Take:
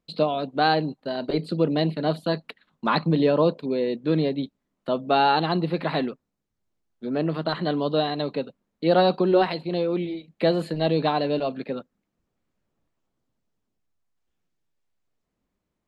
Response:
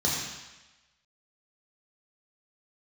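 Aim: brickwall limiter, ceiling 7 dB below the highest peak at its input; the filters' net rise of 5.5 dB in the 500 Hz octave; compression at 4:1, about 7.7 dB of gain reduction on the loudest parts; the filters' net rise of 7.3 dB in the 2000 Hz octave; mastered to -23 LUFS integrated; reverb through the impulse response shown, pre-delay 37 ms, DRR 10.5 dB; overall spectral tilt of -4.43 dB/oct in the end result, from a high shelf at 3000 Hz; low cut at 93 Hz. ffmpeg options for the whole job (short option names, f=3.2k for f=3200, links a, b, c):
-filter_complex "[0:a]highpass=93,equalizer=f=500:t=o:g=6,equalizer=f=2k:t=o:g=7,highshelf=f=3k:g=7.5,acompressor=threshold=-19dB:ratio=4,alimiter=limit=-14.5dB:level=0:latency=1,asplit=2[a][b];[1:a]atrim=start_sample=2205,adelay=37[c];[b][c]afir=irnorm=-1:irlink=0,volume=-21dB[d];[a][d]amix=inputs=2:normalize=0,volume=2.5dB"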